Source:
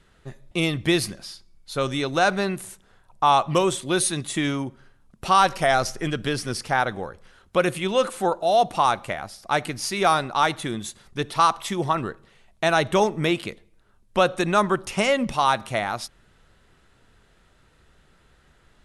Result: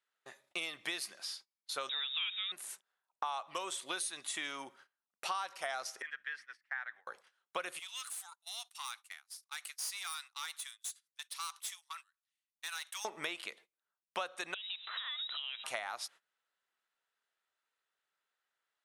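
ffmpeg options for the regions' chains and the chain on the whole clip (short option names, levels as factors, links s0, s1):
-filter_complex "[0:a]asettb=1/sr,asplit=3[s0][s1][s2];[s0]atrim=end=1.894[s3];[s1]atrim=start=1.89:end=2.52,asetpts=PTS-STARTPTS,afade=t=in:d=0.004:c=qsin,afade=t=out:st=0.626:d=0.004:c=qsin,aeval=exprs='val(0)+0.5*0.0168*sgn(val(0))':c=same,lowpass=f=3300:t=q:w=0.5098,lowpass=f=3300:t=q:w=0.6013,lowpass=f=3300:t=q:w=0.9,lowpass=f=3300:t=q:w=2.563,afreqshift=-3900[s4];[s2]atrim=start=2.516[s5];[s3][s4]acrossfade=d=0.004:c1=hsin:c2=qsin[s6];[s6][s5]acrossfade=d=0.004:c1=qsin:c2=hsin,asettb=1/sr,asplit=3[s7][s8][s9];[s7]atrim=end=6.024[s10];[s8]atrim=start=6.02:end=7.07,asetpts=PTS-STARTPTS,afade=t=in:d=0.004:c=qsin,afade=t=out:st=1.046:d=0.004:c=qsin,bandpass=f=1800:t=q:w=6.4,aeval=exprs='val(0)+0.00141*(sin(2*PI*60*n/s)+sin(2*PI*2*60*n/s)/2+sin(2*PI*3*60*n/s)/3+sin(2*PI*4*60*n/s)/4+sin(2*PI*5*60*n/s)/5)':c=same[s11];[s9]atrim=start=7.066[s12];[s10][s11]acrossfade=d=0.004:c1=hsin:c2=qsin[s13];[s13][s12]acrossfade=d=0.004:c1=qsin:c2=hsin,asettb=1/sr,asplit=3[s14][s15][s16];[s14]atrim=end=7.794[s17];[s15]atrim=start=7.79:end=13.05,asetpts=PTS-STARTPTS,afade=t=in:d=0.004:c=qsin,afade=t=out:st=5.256:d=0.004:c=qsin,highpass=f=1000:w=0.5412,highpass=f=1000:w=1.3066,aderivative,aeval=exprs='(tanh(31.6*val(0)+0.45)-tanh(0.45))/31.6':c=same[s18];[s16]atrim=start=13.046[s19];[s17][s18]acrossfade=d=0.004:c1=hsin:c2=qsin[s20];[s20][s19]acrossfade=d=0.004:c1=qsin:c2=hsin,asettb=1/sr,asplit=3[s21][s22][s23];[s21]atrim=end=14.544[s24];[s22]atrim=start=14.54:end=15.64,asetpts=PTS-STARTPTS,afade=t=in:d=0.004:c=qsin,afade=t=out:st=1.096:d=0.004:c=qsin,acompressor=threshold=0.0251:ratio=12:attack=3.2:release=140:knee=1:detection=peak,aeval=exprs='sgn(val(0))*max(abs(val(0))-0.00158,0)':c=same,lowpass=f=3400:t=q:w=0.5098,lowpass=f=3400:t=q:w=0.6013,lowpass=f=3400:t=q:w=0.9,lowpass=f=3400:t=q:w=2.563,afreqshift=-4000[s25];[s23]atrim=start=15.636[s26];[s24][s25]acrossfade=d=0.004:c1=hsin:c2=qsin[s27];[s27][s26]acrossfade=d=0.004:c1=qsin:c2=hsin,agate=range=0.0794:threshold=0.00501:ratio=16:detection=peak,highpass=840,acompressor=threshold=0.02:ratio=6,volume=0.794"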